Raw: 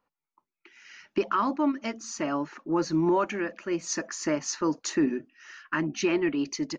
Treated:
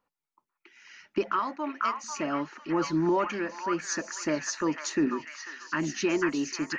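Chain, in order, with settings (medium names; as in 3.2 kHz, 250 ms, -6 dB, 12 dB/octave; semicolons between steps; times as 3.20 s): 1.39–2.04 s: high-pass 730 Hz 6 dB/octave; repeats whose band climbs or falls 494 ms, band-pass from 1.4 kHz, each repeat 0.7 oct, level 0 dB; trim -1.5 dB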